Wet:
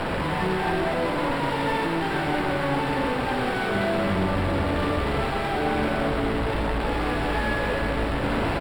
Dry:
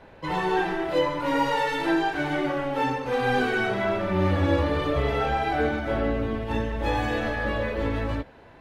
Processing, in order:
sign of each sample alone
moving average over 7 samples
parametric band 200 Hz +4.5 dB 0.28 octaves
pitch-shifted copies added −12 semitones −6 dB
convolution reverb RT60 3.7 s, pre-delay 37 ms, DRR 1.5 dB
level −2 dB

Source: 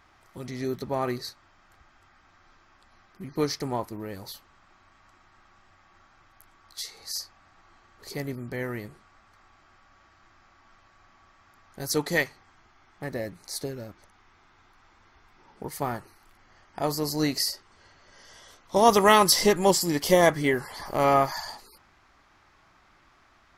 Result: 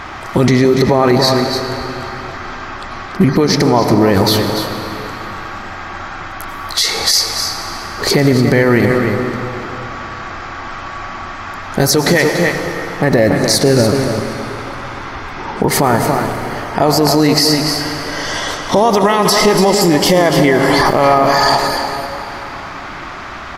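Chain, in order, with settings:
downward compressor 10 to 1, threshold −34 dBFS, peak gain reduction 22 dB
low-pass filter 3,400 Hz 6 dB per octave
low-shelf EQ 80 Hz −6 dB
single-tap delay 287 ms −10 dB
on a send at −9 dB: convolution reverb RT60 3.3 s, pre-delay 82 ms
on the sum: boost into a limiter +33.5 dB
level −1 dB

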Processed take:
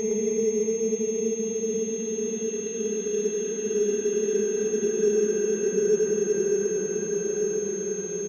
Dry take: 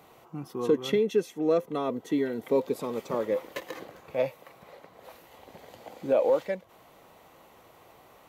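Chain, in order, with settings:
extreme stretch with random phases 37×, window 0.25 s, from 0:01.03
single-tap delay 113 ms −4.5 dB
switching amplifier with a slow clock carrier 6,400 Hz
level −1.5 dB

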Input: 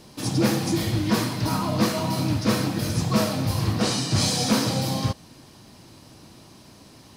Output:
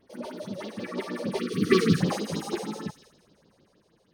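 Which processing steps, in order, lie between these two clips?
source passing by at 0:03.14, 19 m/s, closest 3.2 metres
in parallel at +1 dB: downward compressor, threshold −42 dBFS, peak gain reduction 21 dB
on the sum: Savitzky-Golay smoothing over 25 samples
on a send: delay with a high-pass on its return 289 ms, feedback 32%, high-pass 1,900 Hz, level −5 dB
on the sum: all-pass phaser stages 4, 3.7 Hz, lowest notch 120–1,200 Hz
wrong playback speed 45 rpm record played at 78 rpm
gain on a spectral selection 0:01.39–0:02.00, 510–1,100 Hz −28 dB
level +6.5 dB

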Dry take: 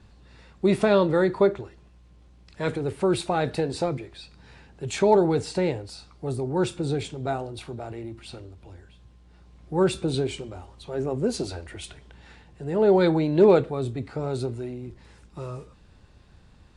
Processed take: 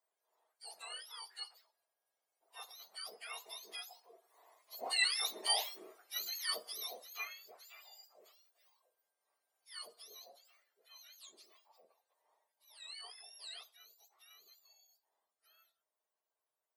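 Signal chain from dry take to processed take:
frequency axis turned over on the octave scale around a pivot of 1,300 Hz
source passing by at 0:05.78, 7 m/s, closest 3.4 metres
four-pole ladder high-pass 580 Hz, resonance 40%
level +4.5 dB

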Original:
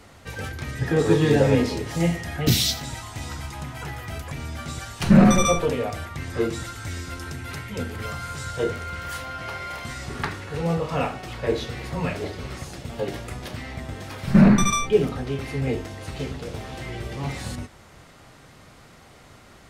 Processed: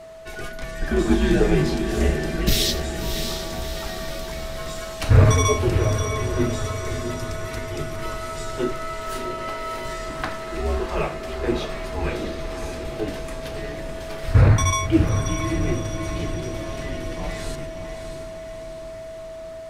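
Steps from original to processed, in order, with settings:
frequency shifter −100 Hz
steady tone 650 Hz −39 dBFS
feedback delay with all-pass diffusion 632 ms, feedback 56%, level −7 dB

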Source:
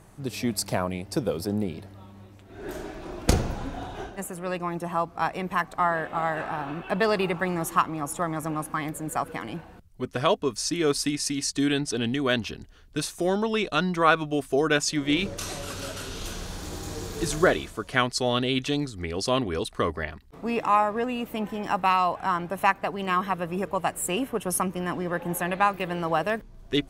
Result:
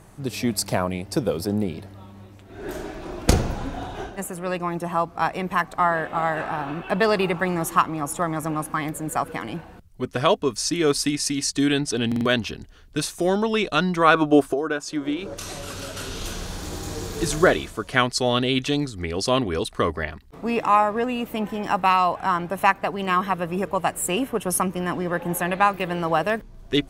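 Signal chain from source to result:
0:14.42–0:15.97: downward compressor 10 to 1, threshold −33 dBFS, peak gain reduction 15.5 dB
0:14.15–0:15.34: gain on a spectral selection 270–1,700 Hz +8 dB
buffer that repeats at 0:12.07, samples 2,048, times 3
level +3.5 dB

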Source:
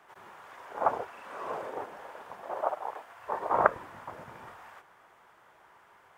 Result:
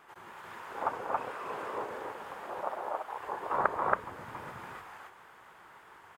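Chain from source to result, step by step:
parametric band 650 Hz −5.5 dB 0.54 octaves
notch filter 5,800 Hz, Q 13
in parallel at +2 dB: downward compressor, threshold −44 dBFS, peak gain reduction 25.5 dB
on the sum: tape wow and flutter 87 cents
loudspeakers that aren't time-aligned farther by 82 metres −11 dB, 95 metres 0 dB
level −5 dB

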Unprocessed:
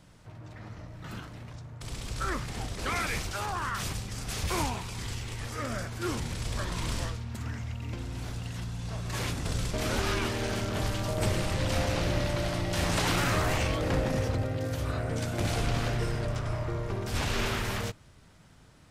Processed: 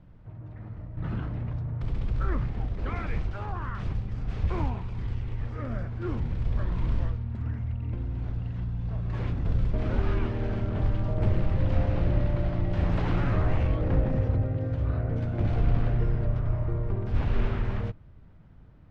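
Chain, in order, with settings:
low-pass filter 2,900 Hz 12 dB per octave
spectral tilt −3 dB per octave
0:00.97–0:02.48: envelope flattener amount 50%
level −5 dB

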